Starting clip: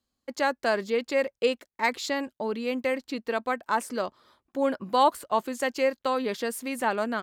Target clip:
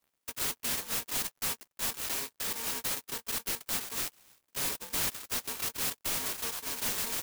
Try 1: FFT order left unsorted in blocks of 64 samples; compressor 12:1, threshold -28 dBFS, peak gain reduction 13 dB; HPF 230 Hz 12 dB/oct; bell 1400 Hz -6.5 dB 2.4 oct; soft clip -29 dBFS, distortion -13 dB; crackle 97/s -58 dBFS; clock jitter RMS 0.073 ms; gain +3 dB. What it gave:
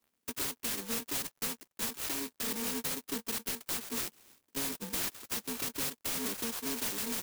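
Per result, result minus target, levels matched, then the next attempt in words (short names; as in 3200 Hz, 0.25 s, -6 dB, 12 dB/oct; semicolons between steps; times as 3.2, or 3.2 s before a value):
compressor: peak gain reduction +13 dB; 250 Hz band +9.5 dB
FFT order left unsorted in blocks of 64 samples; HPF 230 Hz 12 dB/oct; bell 1400 Hz -6.5 dB 2.4 oct; soft clip -29 dBFS, distortion -6 dB; crackle 97/s -58 dBFS; clock jitter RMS 0.073 ms; gain +3 dB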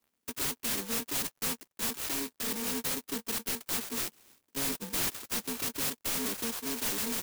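250 Hz band +9.0 dB
FFT order left unsorted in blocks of 64 samples; HPF 690 Hz 12 dB/oct; bell 1400 Hz -6.5 dB 2.4 oct; soft clip -29 dBFS, distortion -6 dB; crackle 97/s -58 dBFS; clock jitter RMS 0.073 ms; gain +3 dB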